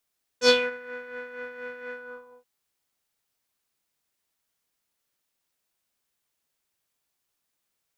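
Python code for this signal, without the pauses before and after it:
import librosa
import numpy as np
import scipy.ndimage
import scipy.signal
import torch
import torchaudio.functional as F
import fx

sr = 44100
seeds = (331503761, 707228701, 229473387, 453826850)

y = fx.sub_patch_tremolo(sr, seeds[0], note=71, wave='square', wave2='saw', interval_st=12, detune_cents=16, level2_db=-9.0, sub_db=-13, noise_db=-7.5, kind='lowpass', cutoff_hz=790.0, q=3.8, env_oct=3.0, env_decay_s=0.26, env_sustain_pct=40, attack_ms=83.0, decay_s=0.21, sustain_db=-22.5, release_s=0.52, note_s=1.51, lfo_hz=4.2, tremolo_db=7.5)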